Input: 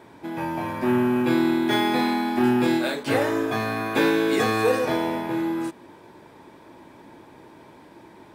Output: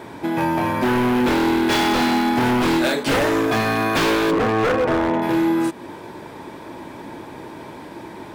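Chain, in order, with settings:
0:04.30–0:05.21: low-pass filter 1,000 Hz → 1,900 Hz 12 dB per octave
in parallel at +3 dB: downward compressor 4 to 1, threshold −34 dBFS, peak gain reduction 15 dB
on the sum: wave folding −17 dBFS
level +4 dB

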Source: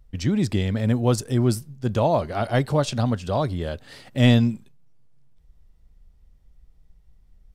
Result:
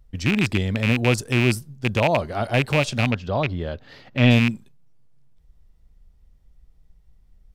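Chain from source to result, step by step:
loose part that buzzes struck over −22 dBFS, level −11 dBFS
0:03.11–0:04.31: moving average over 5 samples

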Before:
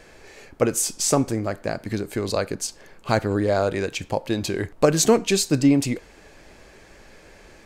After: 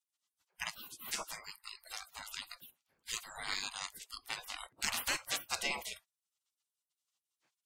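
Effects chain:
noise reduction from a noise print of the clip's start 28 dB
gate on every frequency bin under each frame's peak −30 dB weak
level +3.5 dB

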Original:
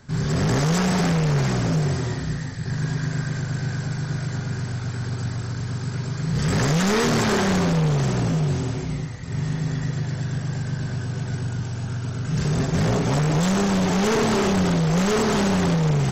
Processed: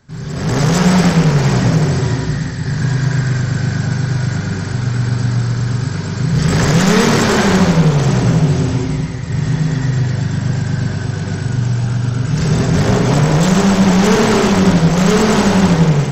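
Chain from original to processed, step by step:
automatic gain control gain up to 12 dB
convolution reverb RT60 0.50 s, pre-delay 104 ms, DRR 4.5 dB
level −4 dB

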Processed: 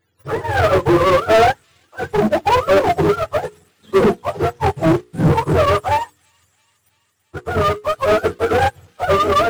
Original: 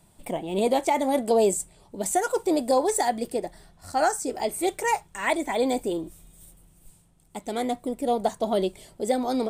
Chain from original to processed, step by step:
frequency axis turned over on the octave scale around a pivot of 550 Hz
in parallel at +1.5 dB: brickwall limiter −18 dBFS, peak gain reduction 6.5 dB
on the sum: leveller curve on the samples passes 3
mains-hum notches 60/120/180/240/300/360/420/480 Hz
power curve on the samples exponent 0.7
on a send: delay with a high-pass on its return 334 ms, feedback 70%, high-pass 3,200 Hz, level −10 dB
on the sum: expander for the loud parts 2.5 to 1, over −23 dBFS

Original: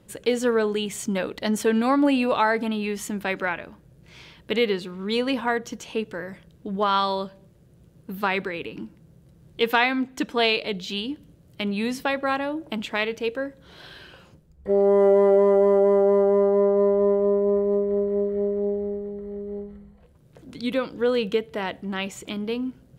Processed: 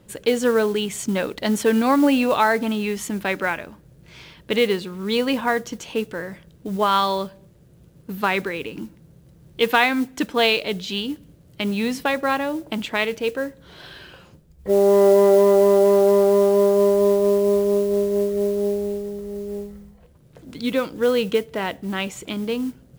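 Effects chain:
noise that follows the level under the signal 24 dB
level +3 dB

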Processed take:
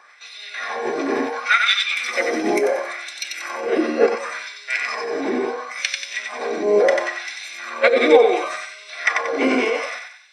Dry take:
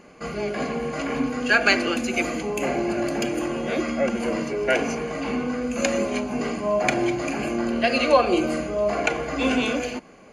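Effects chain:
auto-filter high-pass sine 0.71 Hz 370–3,900 Hz
feedback echo with a high-pass in the loop 92 ms, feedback 45%, high-pass 950 Hz, level −3.5 dB
formants moved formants −3 semitones
level +2 dB

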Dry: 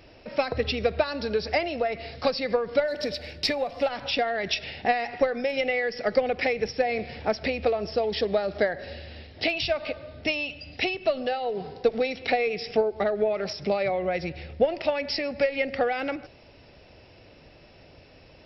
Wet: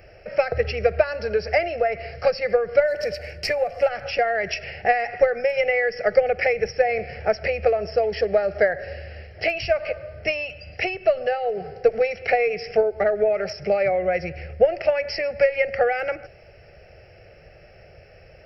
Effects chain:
phaser with its sweep stopped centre 1,000 Hz, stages 6
level +6 dB

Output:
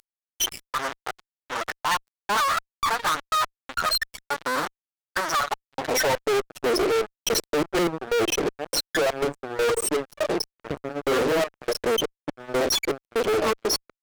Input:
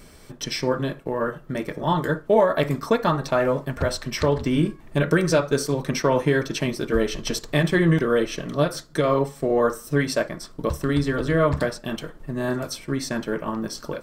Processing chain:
expanding power law on the bin magnitudes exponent 3.1
gate pattern "xx.x..xxx..x" 122 BPM −24 dB
parametric band 530 Hz −14 dB 0.77 octaves
half-wave rectification
high-pass filter sweep 1,300 Hz → 440 Hz, 0:05.34–0:06.30
fuzz pedal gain 49 dB, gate −53 dBFS
level −7 dB

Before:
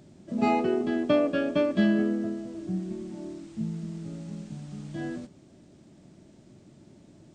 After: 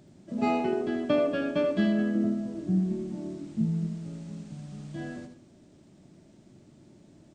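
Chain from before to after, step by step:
0:02.15–0:03.87: parametric band 200 Hz +7.5 dB 2.6 octaves
multi-tap delay 80/218 ms −7.5/−19.5 dB
level −2.5 dB

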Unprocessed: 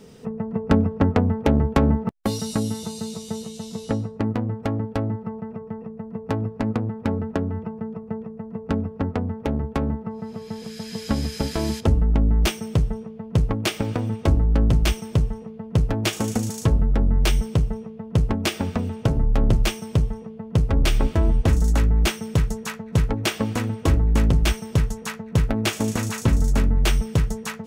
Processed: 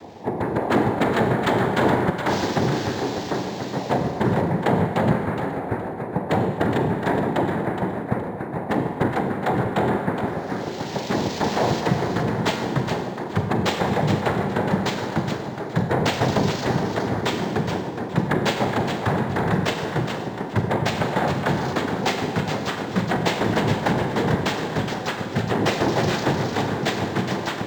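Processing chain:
flat-topped bell 670 Hz +9 dB 1 octave
in parallel at 0 dB: brickwall limiter −12 dBFS, peak gain reduction 11 dB
on the sum: wave folding −10.5 dBFS
cochlear-implant simulation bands 6
on a send: feedback echo with a high-pass in the loop 418 ms, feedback 22%, level −7 dB
on the sum: four-comb reverb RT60 1.4 s, combs from 32 ms, DRR 6 dB
linearly interpolated sample-rate reduction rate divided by 4×
level −2 dB

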